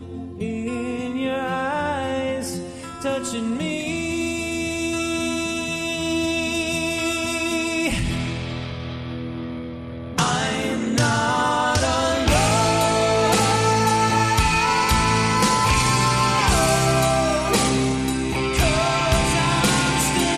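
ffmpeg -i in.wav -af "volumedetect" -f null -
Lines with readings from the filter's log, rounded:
mean_volume: -21.1 dB
max_volume: -7.1 dB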